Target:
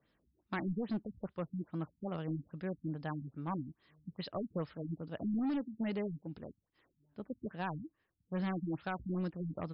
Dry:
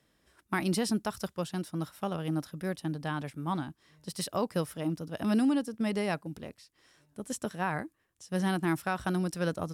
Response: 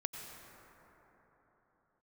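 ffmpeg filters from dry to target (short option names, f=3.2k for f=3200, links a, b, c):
-af "asoftclip=type=hard:threshold=-26.5dB,afftfilt=real='re*lt(b*sr/1024,270*pow(5400/270,0.5+0.5*sin(2*PI*2.4*pts/sr)))':imag='im*lt(b*sr/1024,270*pow(5400/270,0.5+0.5*sin(2*PI*2.4*pts/sr)))':win_size=1024:overlap=0.75,volume=-4.5dB"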